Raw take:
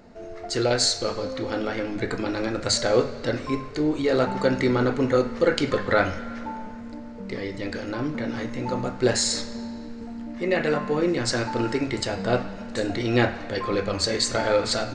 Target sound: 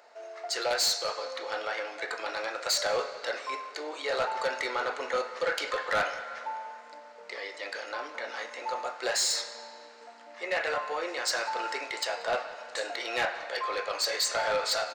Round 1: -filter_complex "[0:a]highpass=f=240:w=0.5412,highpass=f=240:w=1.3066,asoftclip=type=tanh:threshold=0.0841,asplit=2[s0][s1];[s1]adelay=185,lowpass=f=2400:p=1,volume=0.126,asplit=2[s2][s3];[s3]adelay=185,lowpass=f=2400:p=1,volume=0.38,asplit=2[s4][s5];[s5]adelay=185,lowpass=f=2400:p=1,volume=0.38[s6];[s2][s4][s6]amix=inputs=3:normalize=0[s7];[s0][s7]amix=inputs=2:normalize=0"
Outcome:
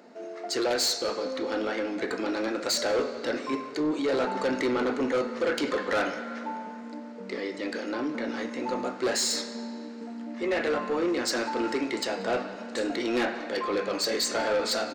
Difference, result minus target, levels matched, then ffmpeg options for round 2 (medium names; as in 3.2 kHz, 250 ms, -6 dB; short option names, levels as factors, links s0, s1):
250 Hz band +17.0 dB
-filter_complex "[0:a]highpass=f=600:w=0.5412,highpass=f=600:w=1.3066,asoftclip=type=tanh:threshold=0.0841,asplit=2[s0][s1];[s1]adelay=185,lowpass=f=2400:p=1,volume=0.126,asplit=2[s2][s3];[s3]adelay=185,lowpass=f=2400:p=1,volume=0.38,asplit=2[s4][s5];[s5]adelay=185,lowpass=f=2400:p=1,volume=0.38[s6];[s2][s4][s6]amix=inputs=3:normalize=0[s7];[s0][s7]amix=inputs=2:normalize=0"